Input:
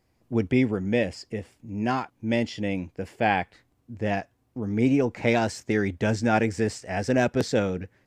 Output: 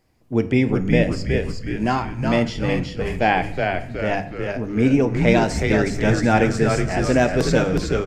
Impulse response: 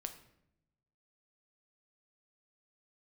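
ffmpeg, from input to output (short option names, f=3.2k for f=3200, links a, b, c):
-filter_complex "[0:a]bandreject=f=50:t=h:w=6,bandreject=f=100:t=h:w=6,bandreject=f=150:t=h:w=6,bandreject=f=200:t=h:w=6,asplit=7[a][b][c][d][e][f][g];[b]adelay=368,afreqshift=-92,volume=-4dB[h];[c]adelay=736,afreqshift=-184,volume=-10.2dB[i];[d]adelay=1104,afreqshift=-276,volume=-16.4dB[j];[e]adelay=1472,afreqshift=-368,volume=-22.6dB[k];[f]adelay=1840,afreqshift=-460,volume=-28.8dB[l];[g]adelay=2208,afreqshift=-552,volume=-35dB[m];[a][h][i][j][k][l][m]amix=inputs=7:normalize=0,asplit=2[n][o];[1:a]atrim=start_sample=2205[p];[o][p]afir=irnorm=-1:irlink=0,volume=6dB[q];[n][q]amix=inputs=2:normalize=0,volume=-3dB"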